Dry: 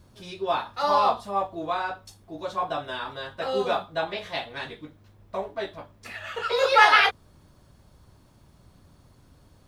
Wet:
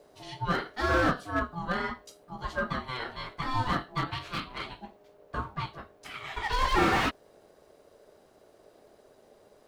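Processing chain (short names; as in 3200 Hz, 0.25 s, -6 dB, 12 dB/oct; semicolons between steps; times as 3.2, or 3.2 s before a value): ring modulator 510 Hz; slew limiter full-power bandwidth 92 Hz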